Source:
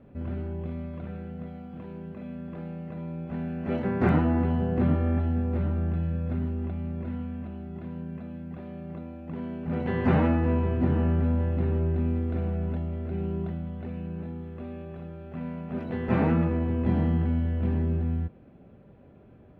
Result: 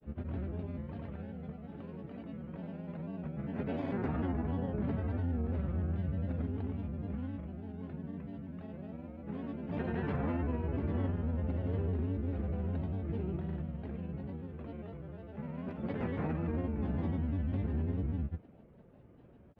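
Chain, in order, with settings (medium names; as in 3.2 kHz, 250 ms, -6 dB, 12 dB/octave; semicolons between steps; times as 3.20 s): peak limiter -21.5 dBFS, peak gain reduction 10.5 dB; granulator, pitch spread up and down by 3 st; trim -4 dB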